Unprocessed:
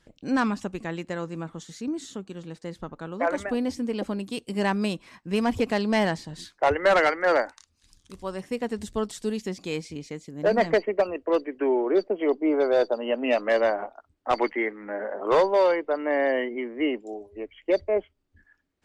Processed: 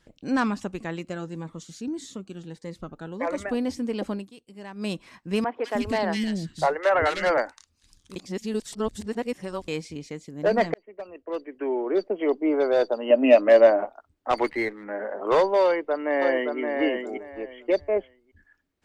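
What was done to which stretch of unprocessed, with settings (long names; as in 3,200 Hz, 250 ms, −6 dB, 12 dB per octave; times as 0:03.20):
0:00.99–0:03.42: phaser whose notches keep moving one way rising 1.7 Hz
0:04.14–0:04.92: duck −16 dB, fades 0.17 s
0:05.44–0:07.38: three-band delay without the direct sound mids, highs, lows 200/310 ms, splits 350/2,100 Hz
0:08.16–0:09.68: reverse
0:10.74–0:12.24: fade in
0:13.10–0:13.85: hollow resonant body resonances 290/590/2,500 Hz, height 11 dB
0:14.37–0:14.84: windowed peak hold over 3 samples
0:15.64–0:16.60: delay throw 570 ms, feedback 20%, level −4.5 dB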